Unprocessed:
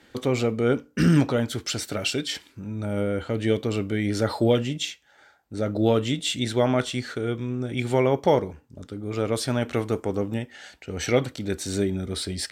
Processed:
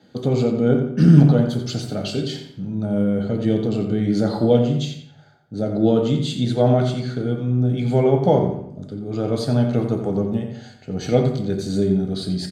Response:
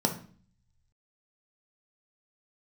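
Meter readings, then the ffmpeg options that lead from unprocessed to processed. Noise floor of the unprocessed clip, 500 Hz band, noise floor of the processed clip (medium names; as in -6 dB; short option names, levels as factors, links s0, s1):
-58 dBFS, +4.0 dB, -47 dBFS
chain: -filter_complex "[0:a]asplit=2[s0][s1];[s1]adelay=88,lowpass=f=4500:p=1,volume=0.398,asplit=2[s2][s3];[s3]adelay=88,lowpass=f=4500:p=1,volume=0.41,asplit=2[s4][s5];[s5]adelay=88,lowpass=f=4500:p=1,volume=0.41,asplit=2[s6][s7];[s7]adelay=88,lowpass=f=4500:p=1,volume=0.41,asplit=2[s8][s9];[s9]adelay=88,lowpass=f=4500:p=1,volume=0.41[s10];[s0][s2][s4][s6][s8][s10]amix=inputs=6:normalize=0[s11];[1:a]atrim=start_sample=2205,asetrate=36162,aresample=44100[s12];[s11][s12]afir=irnorm=-1:irlink=0,volume=0.251"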